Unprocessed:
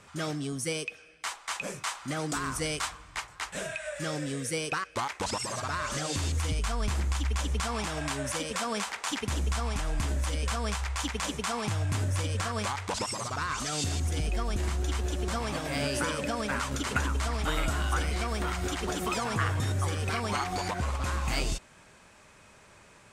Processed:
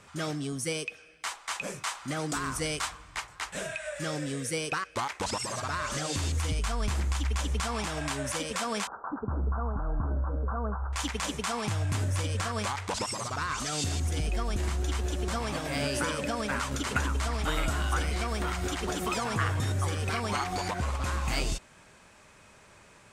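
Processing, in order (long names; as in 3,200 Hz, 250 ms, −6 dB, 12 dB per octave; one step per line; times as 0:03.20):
0:08.87–0:10.93: Butterworth low-pass 1,500 Hz 96 dB per octave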